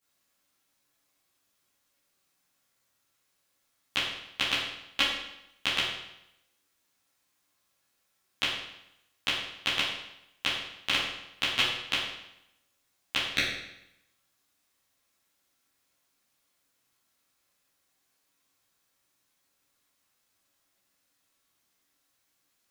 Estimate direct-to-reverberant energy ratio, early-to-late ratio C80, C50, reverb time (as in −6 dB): −12.0 dB, 5.0 dB, 1.5 dB, 0.85 s